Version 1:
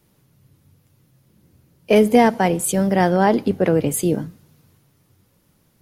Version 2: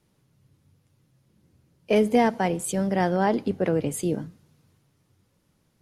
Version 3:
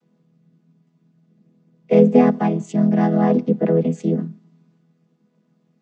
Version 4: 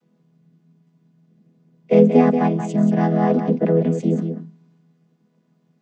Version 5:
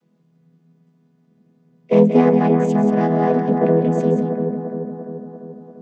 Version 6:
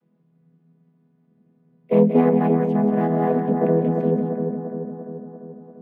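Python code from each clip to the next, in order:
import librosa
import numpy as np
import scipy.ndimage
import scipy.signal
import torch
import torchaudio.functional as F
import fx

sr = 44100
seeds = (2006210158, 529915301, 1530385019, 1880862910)

y1 = scipy.signal.sosfilt(scipy.signal.butter(2, 10000.0, 'lowpass', fs=sr, output='sos'), x)
y1 = F.gain(torch.from_numpy(y1), -6.5).numpy()
y2 = fx.chord_vocoder(y1, sr, chord='major triad', root=52)
y2 = F.gain(torch.from_numpy(y2), 8.0).numpy()
y3 = y2 + 10.0 ** (-8.0 / 20.0) * np.pad(y2, (int(181 * sr / 1000.0), 0))[:len(y2)]
y4 = fx.self_delay(y3, sr, depth_ms=0.11)
y4 = fx.echo_bbd(y4, sr, ms=344, stages=4096, feedback_pct=59, wet_db=-5.5)
y5 = fx.air_absorb(y4, sr, metres=270.0)
y5 = np.interp(np.arange(len(y5)), np.arange(len(y5))[::3], y5[::3])
y5 = F.gain(torch.from_numpy(y5), -2.5).numpy()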